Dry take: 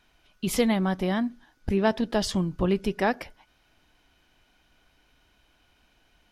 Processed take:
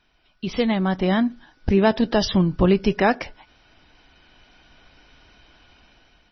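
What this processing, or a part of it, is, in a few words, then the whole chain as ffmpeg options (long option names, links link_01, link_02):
low-bitrate web radio: -af "dynaudnorm=framelen=370:gausssize=5:maxgain=11.5dB,alimiter=limit=-5.5dB:level=0:latency=1:release=292" -ar 24000 -c:a libmp3lame -b:a 24k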